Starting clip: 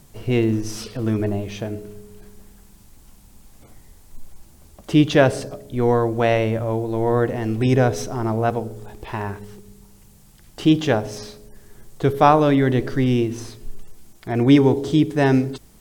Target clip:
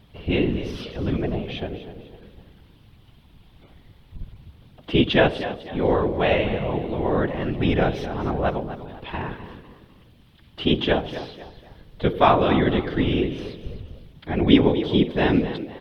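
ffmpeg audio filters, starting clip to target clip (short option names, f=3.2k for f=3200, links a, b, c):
-filter_complex "[0:a]afftfilt=real='hypot(re,im)*cos(2*PI*random(0))':imag='hypot(re,im)*sin(2*PI*random(1))':win_size=512:overlap=0.75,highshelf=f=4.9k:t=q:w=3:g=-14,asplit=4[a][b][c][d];[b]adelay=250,afreqshift=53,volume=-13dB[e];[c]adelay=500,afreqshift=106,volume=-22.1dB[f];[d]adelay=750,afreqshift=159,volume=-31.2dB[g];[a][e][f][g]amix=inputs=4:normalize=0,volume=3dB"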